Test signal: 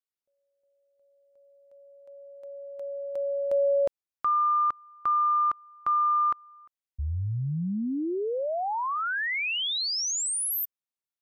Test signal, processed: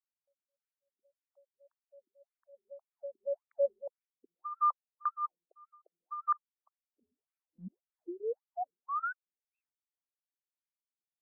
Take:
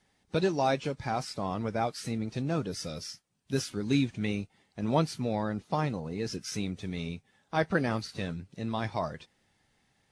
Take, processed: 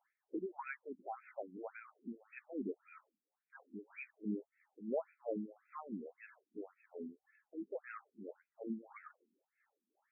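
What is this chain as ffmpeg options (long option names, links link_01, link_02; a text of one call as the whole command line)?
ffmpeg -i in.wav -af "tremolo=f=3:d=0.83,bass=frequency=250:gain=1,treble=frequency=4000:gain=11,alimiter=limit=-20.5dB:level=0:latency=1:release=405,afftfilt=real='re*between(b*sr/1024,270*pow(1900/270,0.5+0.5*sin(2*PI*1.8*pts/sr))/1.41,270*pow(1900/270,0.5+0.5*sin(2*PI*1.8*pts/sr))*1.41)':imag='im*between(b*sr/1024,270*pow(1900/270,0.5+0.5*sin(2*PI*1.8*pts/sr))/1.41,270*pow(1900/270,0.5+0.5*sin(2*PI*1.8*pts/sr))*1.41)':win_size=1024:overlap=0.75,volume=-1dB" out.wav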